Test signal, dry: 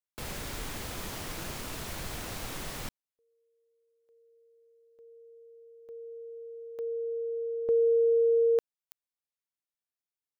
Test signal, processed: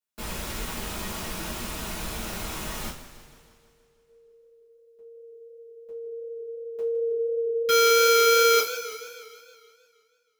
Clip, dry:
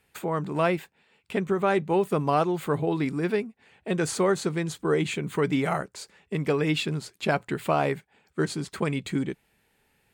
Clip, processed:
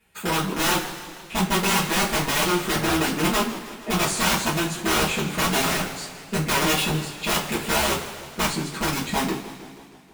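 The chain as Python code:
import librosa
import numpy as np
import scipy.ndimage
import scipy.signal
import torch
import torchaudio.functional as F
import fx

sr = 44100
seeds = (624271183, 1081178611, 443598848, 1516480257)

y = (np.mod(10.0 ** (20.5 / 20.0) * x + 1.0, 2.0) - 1.0) / 10.0 ** (20.5 / 20.0)
y = fx.rev_double_slope(y, sr, seeds[0], early_s=0.28, late_s=1.9, knee_db=-19, drr_db=-9.5)
y = fx.echo_warbled(y, sr, ms=158, feedback_pct=63, rate_hz=2.8, cents=142, wet_db=-15.5)
y = F.gain(torch.from_numpy(y), -5.0).numpy()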